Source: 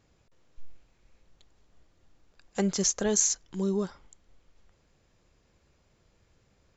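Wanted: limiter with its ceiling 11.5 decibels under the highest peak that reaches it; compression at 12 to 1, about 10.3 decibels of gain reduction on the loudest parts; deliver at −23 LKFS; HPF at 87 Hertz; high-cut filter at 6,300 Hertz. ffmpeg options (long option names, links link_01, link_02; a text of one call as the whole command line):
ffmpeg -i in.wav -af "highpass=87,lowpass=6300,acompressor=threshold=-33dB:ratio=12,volume=17dB,alimiter=limit=-12.5dB:level=0:latency=1" out.wav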